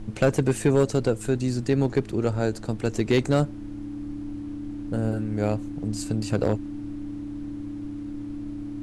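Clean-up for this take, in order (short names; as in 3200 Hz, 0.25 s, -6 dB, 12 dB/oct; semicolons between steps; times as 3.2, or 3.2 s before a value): clip repair -12 dBFS; de-hum 107.2 Hz, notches 3; notch 290 Hz, Q 30; noise print and reduce 30 dB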